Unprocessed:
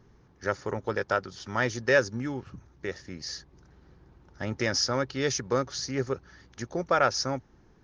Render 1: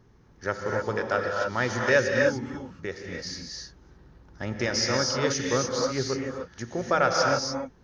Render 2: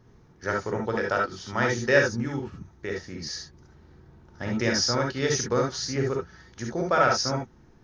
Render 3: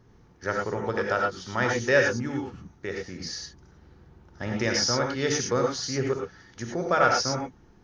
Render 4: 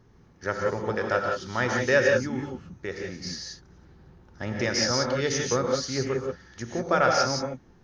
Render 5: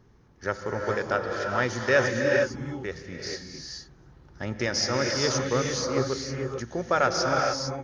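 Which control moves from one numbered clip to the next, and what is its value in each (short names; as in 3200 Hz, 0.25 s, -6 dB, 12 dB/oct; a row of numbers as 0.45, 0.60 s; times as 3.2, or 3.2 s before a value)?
non-linear reverb, gate: 320, 90, 130, 200, 480 ms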